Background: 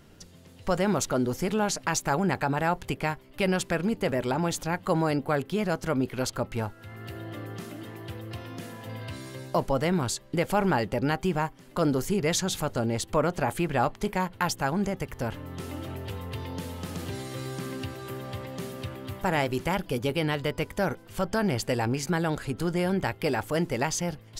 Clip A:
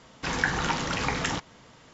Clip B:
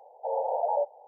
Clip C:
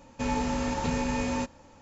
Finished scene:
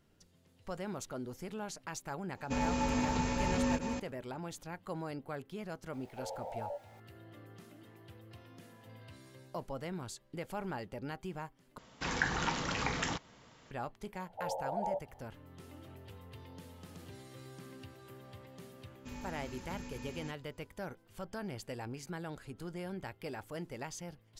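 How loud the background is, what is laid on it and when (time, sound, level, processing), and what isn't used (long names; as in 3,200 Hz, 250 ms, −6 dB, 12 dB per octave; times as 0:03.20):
background −15.5 dB
0:02.31: mix in C −4.5 dB, fades 0.10 s + delay that plays each chunk backwards 211 ms, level −4 dB
0:05.93: mix in B −15 dB + converter with a step at zero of −42.5 dBFS
0:11.78: overwrite with A −6.5 dB
0:14.14: mix in B −6 dB + high-pass filter 690 Hz 6 dB per octave
0:18.86: mix in C −15 dB + parametric band 700 Hz −10 dB 1.5 octaves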